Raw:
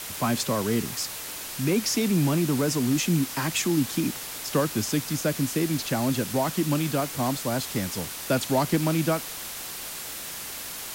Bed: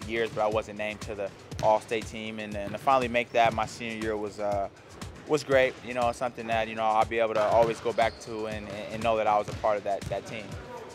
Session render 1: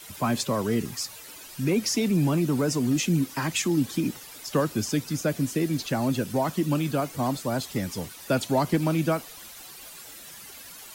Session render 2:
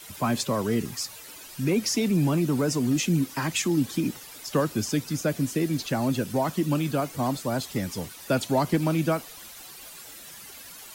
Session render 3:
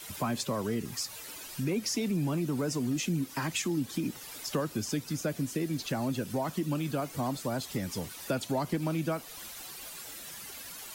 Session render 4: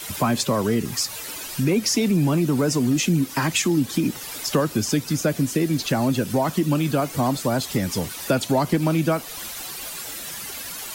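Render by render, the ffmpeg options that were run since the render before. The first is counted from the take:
-af "afftdn=nr=12:nf=-37"
-af anull
-af "acompressor=threshold=-33dB:ratio=2"
-af "volume=10.5dB"

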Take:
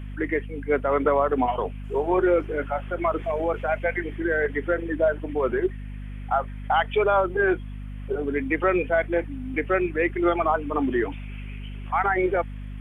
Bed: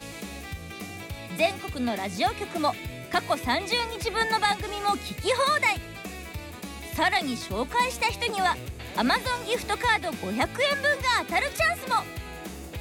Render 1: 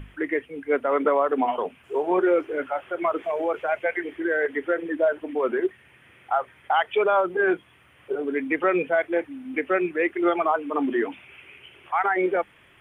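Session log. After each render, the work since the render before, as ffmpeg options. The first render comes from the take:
-af "bandreject=f=50:t=h:w=6,bandreject=f=100:t=h:w=6,bandreject=f=150:t=h:w=6,bandreject=f=200:t=h:w=6,bandreject=f=250:t=h:w=6"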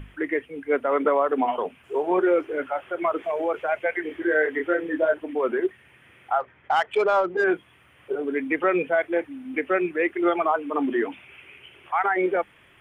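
-filter_complex "[0:a]asettb=1/sr,asplit=3[a][b][c];[a]atrim=end=4.024[d];[b]atrim=start=4.02:end=5.14,asetpts=PTS-STARTPTS,afade=t=in:d=0.004:c=qsin,afade=t=out:st=1.116:d=0.004:c=qsin,asplit=2[e][f];[f]adelay=26,volume=-3.5dB[g];[e][g]amix=inputs=2:normalize=0,atrim=end_sample=49392[h];[c]atrim=start=5.136[i];[d][h]acrossfade=d=0.004:c1=hsin:c2=qsin[j];[j][i]acrossfade=d=0.004:c1=qsin:c2=hsin,asettb=1/sr,asplit=3[k][l][m];[k]atrim=end=6.404[n];[l]atrim=start=6.4:end=7.44,asetpts=PTS-STARTPTS,afade=t=in:d=0.004:c=qsin,afade=t=out:st=1.036:d=0.004:c=qsin,adynamicsmooth=sensitivity=2.5:basefreq=2.6k[o];[m]atrim=start=7.436[p];[n][o]acrossfade=d=0.004:c1=hsin:c2=qsin[q];[q][p]acrossfade=d=0.004:c1=qsin:c2=hsin"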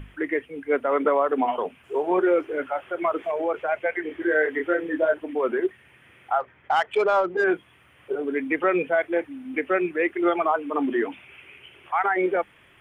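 -filter_complex "[0:a]asettb=1/sr,asplit=3[a][b][c];[a]atrim=end=3.314[d];[b]atrim=start=3.31:end=4.2,asetpts=PTS-STARTPTS,afade=t=in:d=0.004:c=qsin,afade=t=out:st=0.886:d=0.004:c=qsin,highshelf=f=4.1k:g=-5.5[e];[c]atrim=start=4.196[f];[d][e]acrossfade=d=0.004:c1=hsin:c2=qsin[g];[g][f]acrossfade=d=0.004:c1=qsin:c2=hsin"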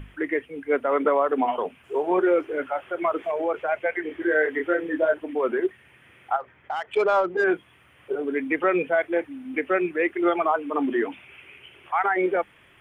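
-filter_complex "[0:a]asettb=1/sr,asplit=3[a][b][c];[a]atrim=end=6.364[d];[b]atrim=start=6.36:end=6.97,asetpts=PTS-STARTPTS,afade=t=in:d=0.004:c=qsin,afade=t=out:st=0.606:d=0.004:c=qsin,acompressor=threshold=-31dB:ratio=2:attack=3.2:release=140:knee=1:detection=peak[e];[c]atrim=start=6.966[f];[d][e]acrossfade=d=0.004:c1=hsin:c2=qsin[g];[g][f]acrossfade=d=0.004:c1=qsin:c2=hsin"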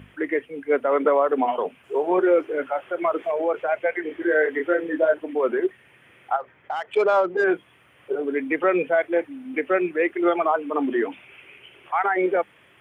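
-af "highpass=100,equalizer=f=530:w=1.6:g=3"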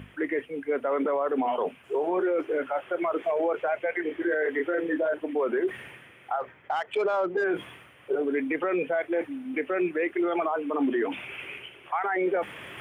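-af "areverse,acompressor=mode=upward:threshold=-29dB:ratio=2.5,areverse,alimiter=limit=-19dB:level=0:latency=1:release=17"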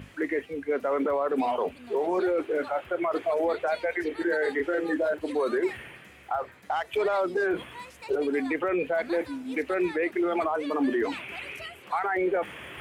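-filter_complex "[1:a]volume=-19dB[a];[0:a][a]amix=inputs=2:normalize=0"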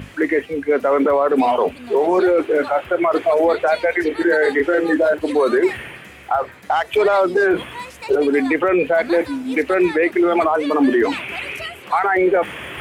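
-af "volume=10.5dB"

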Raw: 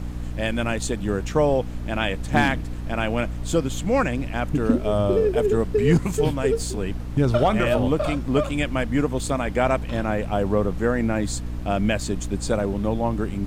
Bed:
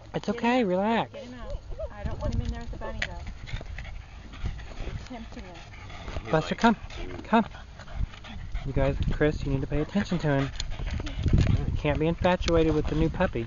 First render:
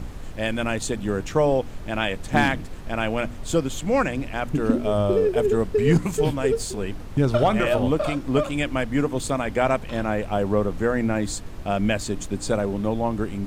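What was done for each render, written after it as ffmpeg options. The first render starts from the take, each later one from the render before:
-af "bandreject=f=60:t=h:w=4,bandreject=f=120:t=h:w=4,bandreject=f=180:t=h:w=4,bandreject=f=240:t=h:w=4,bandreject=f=300:t=h:w=4"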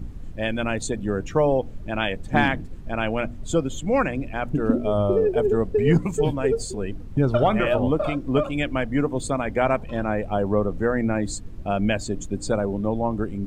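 -af "afftdn=nr=13:nf=-35"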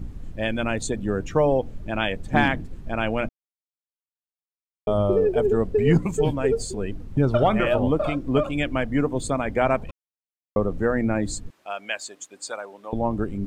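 -filter_complex "[0:a]asettb=1/sr,asplit=3[a][b][c];[a]atrim=end=11.504[d];[b]atrim=start=11.5:end=12.93,asetpts=PTS-STARTPTS,afade=t=in:d=0.004:c=qsin,afade=t=out:st=1.426:d=0.004:c=qsin,highpass=980[e];[c]atrim=start=12.926[f];[d][e]acrossfade=d=0.004:c1=hsin:c2=qsin[g];[g][f]acrossfade=d=0.004:c1=qsin:c2=hsin,asplit=5[h][i][j][k][l];[h]atrim=end=3.29,asetpts=PTS-STARTPTS,afade=t=out:st=3.286:d=0.004:c=hsin[m];[i]atrim=start=3.29:end=4.87,asetpts=PTS-STARTPTS,volume=0[n];[j]atrim=start=4.87:end=9.91,asetpts=PTS-STARTPTS,afade=t=in:d=0.004:c=hsin,afade=t=out:st=5.036:d=0.004:c=hsin[o];[k]atrim=start=9.91:end=10.56,asetpts=PTS-STARTPTS,volume=0[p];[l]atrim=start=10.56,asetpts=PTS-STARTPTS,afade=t=in:d=0.004:c=hsin[q];[m][n][o][p][q]concat=n=5:v=0:a=1"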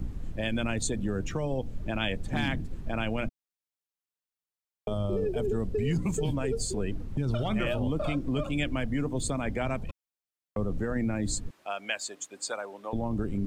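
-filter_complex "[0:a]acrossover=split=250|3000[a][b][c];[b]acompressor=threshold=-31dB:ratio=3[d];[a][d][c]amix=inputs=3:normalize=0,acrossover=split=2100[e][f];[e]alimiter=limit=-21.5dB:level=0:latency=1:release=16[g];[g][f]amix=inputs=2:normalize=0"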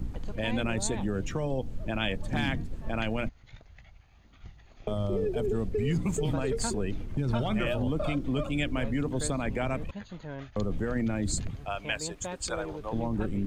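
-filter_complex "[1:a]volume=-15dB[a];[0:a][a]amix=inputs=2:normalize=0"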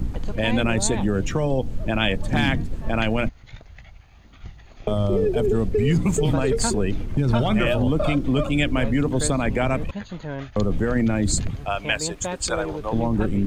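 -af "volume=8.5dB"

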